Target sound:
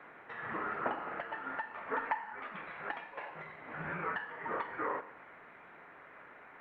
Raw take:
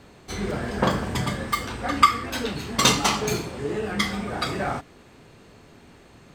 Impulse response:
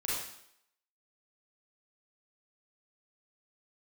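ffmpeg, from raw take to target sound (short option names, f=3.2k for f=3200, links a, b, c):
-filter_complex "[0:a]aderivative,acompressor=threshold=-48dB:ratio=8,asoftclip=type=hard:threshold=-33.5dB,asetrate=42336,aresample=44100,asplit=2[a][b];[1:a]atrim=start_sample=2205[c];[b][c]afir=irnorm=-1:irlink=0,volume=-16.5dB[d];[a][d]amix=inputs=2:normalize=0,highpass=f=500:t=q:w=0.5412,highpass=f=500:t=q:w=1.307,lowpass=f=2.2k:t=q:w=0.5176,lowpass=f=2.2k:t=q:w=0.7071,lowpass=f=2.2k:t=q:w=1.932,afreqshift=-250,volume=17.5dB" -ar 48000 -c:a libopus -b:a 48k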